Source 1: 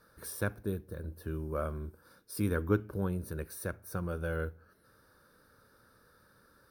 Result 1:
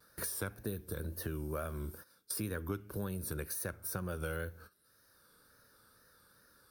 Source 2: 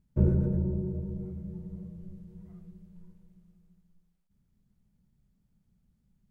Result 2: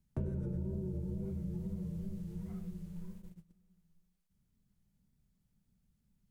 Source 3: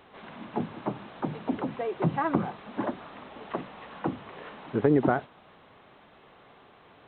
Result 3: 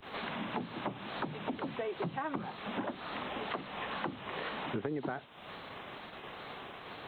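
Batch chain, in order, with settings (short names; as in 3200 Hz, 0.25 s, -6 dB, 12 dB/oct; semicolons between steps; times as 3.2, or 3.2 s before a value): gate -55 dBFS, range -21 dB; high shelf 2500 Hz +11 dB; compressor 4:1, threshold -40 dBFS; wow and flutter 74 cents; three-band squash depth 40%; gain +4 dB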